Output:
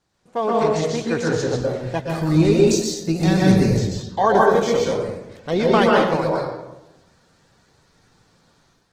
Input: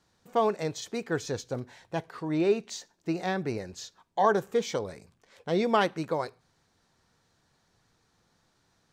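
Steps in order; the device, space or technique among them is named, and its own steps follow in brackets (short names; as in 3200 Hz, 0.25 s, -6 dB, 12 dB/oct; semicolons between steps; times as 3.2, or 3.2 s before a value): 2.08–3.73 tone controls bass +12 dB, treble +14 dB; speakerphone in a meeting room (reverb RT60 0.95 s, pre-delay 0.115 s, DRR -2.5 dB; AGC gain up to 8 dB; gain -1 dB; Opus 16 kbps 48000 Hz)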